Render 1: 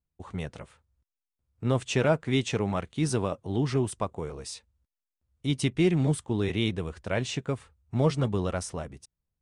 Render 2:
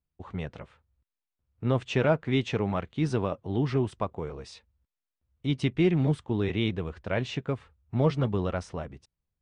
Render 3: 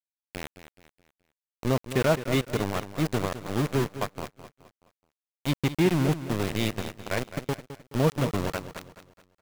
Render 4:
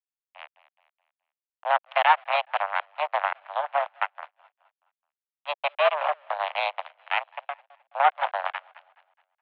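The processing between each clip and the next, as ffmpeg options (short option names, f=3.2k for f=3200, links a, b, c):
-af "lowpass=3.6k"
-filter_complex "[0:a]aeval=exprs='val(0)*gte(abs(val(0)),0.0531)':c=same,asplit=2[a][b];[b]aecho=0:1:212|424|636|848:0.237|0.0925|0.0361|0.0141[c];[a][c]amix=inputs=2:normalize=0,volume=1dB"
-af "aeval=exprs='0.316*(cos(1*acos(clip(val(0)/0.316,-1,1)))-cos(1*PI/2))+0.0355*(cos(2*acos(clip(val(0)/0.316,-1,1)))-cos(2*PI/2))+0.0562*(cos(7*acos(clip(val(0)/0.316,-1,1)))-cos(7*PI/2))':c=same,highpass=f=360:t=q:w=0.5412,highpass=f=360:t=q:w=1.307,lowpass=f=2.9k:t=q:w=0.5176,lowpass=f=2.9k:t=q:w=0.7071,lowpass=f=2.9k:t=q:w=1.932,afreqshift=290,volume=5dB"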